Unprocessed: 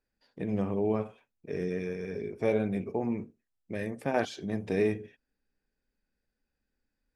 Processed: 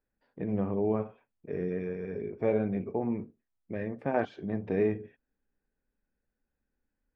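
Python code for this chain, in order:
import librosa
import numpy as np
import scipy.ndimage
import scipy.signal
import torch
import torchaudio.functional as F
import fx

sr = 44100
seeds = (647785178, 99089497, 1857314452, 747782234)

y = scipy.signal.sosfilt(scipy.signal.butter(2, 1800.0, 'lowpass', fs=sr, output='sos'), x)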